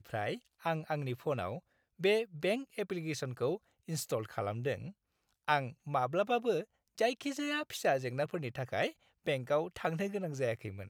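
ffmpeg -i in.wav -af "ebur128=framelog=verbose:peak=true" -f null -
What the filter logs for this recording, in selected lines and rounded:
Integrated loudness:
  I:         -35.5 LUFS
  Threshold: -45.7 LUFS
Loudness range:
  LRA:         3.0 LU
  Threshold: -55.6 LUFS
  LRA low:   -37.3 LUFS
  LRA high:  -34.3 LUFS
True peak:
  Peak:      -13.7 dBFS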